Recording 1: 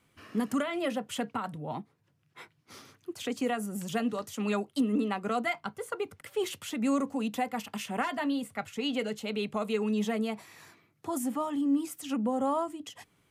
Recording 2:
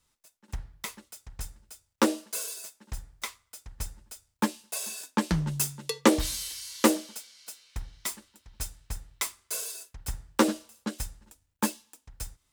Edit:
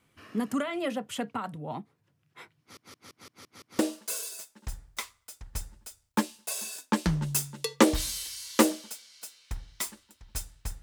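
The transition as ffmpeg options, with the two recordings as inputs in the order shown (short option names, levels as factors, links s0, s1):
-filter_complex "[0:a]apad=whole_dur=10.82,atrim=end=10.82,asplit=7[s0][s1][s2][s3][s4][s5][s6];[s0]atrim=end=2.772[s7];[s1]atrim=start=2.598:end=2.772[s8];[s2]atrim=start=2.598:end=2.772[s9];[s3]atrim=start=2.598:end=2.772[s10];[s4]atrim=start=2.598:end=2.772[s11];[s5]atrim=start=2.598:end=2.772[s12];[s6]atrim=start=2.598:end=2.772[s13];[1:a]atrim=start=2.038:end=9.07[s14];[s7][s8]acrossfade=d=0.004:c1=hsin:c2=hsin[s15];[s15][s9]acrossfade=d=0.004:c1=hsin:c2=hsin[s16];[s16][s10]acrossfade=d=0.004:c1=hsin:c2=hsin[s17];[s17][s11]acrossfade=d=0.004:c1=hsin:c2=hsin[s18];[s18][s12]acrossfade=d=0.004:c1=hsin:c2=hsin[s19];[s19][s13]acrossfade=d=0.004:c1=hsin:c2=hsin[s20];[s20][s14]acrossfade=d=0.004:c1=hsin:c2=hsin"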